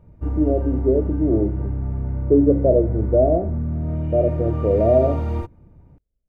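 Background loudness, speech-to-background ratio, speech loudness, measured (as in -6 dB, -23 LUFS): -26.0 LUFS, 6.0 dB, -20.0 LUFS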